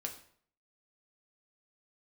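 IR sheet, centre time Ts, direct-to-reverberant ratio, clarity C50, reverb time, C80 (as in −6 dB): 15 ms, 2.0 dB, 10.0 dB, 0.55 s, 13.5 dB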